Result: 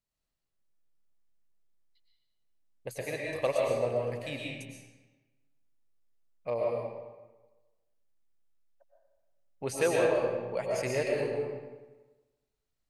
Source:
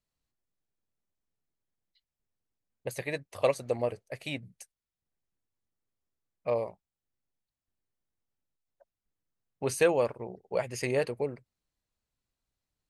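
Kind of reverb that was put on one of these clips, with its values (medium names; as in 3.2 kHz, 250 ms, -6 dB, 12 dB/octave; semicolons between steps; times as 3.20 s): algorithmic reverb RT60 1.2 s, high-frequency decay 0.8×, pre-delay 80 ms, DRR -2.5 dB; trim -4 dB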